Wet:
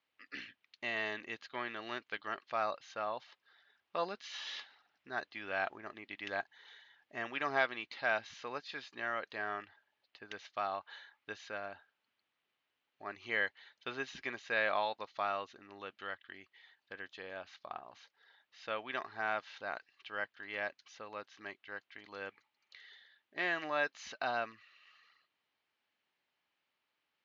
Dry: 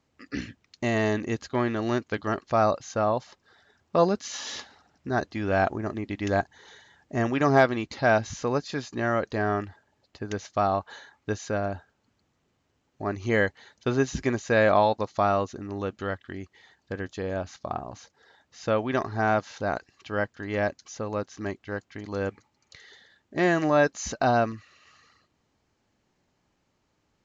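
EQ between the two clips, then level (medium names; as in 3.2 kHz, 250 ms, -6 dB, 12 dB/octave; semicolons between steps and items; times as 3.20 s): low-pass 3.3 kHz 24 dB/octave; differentiator; +6.0 dB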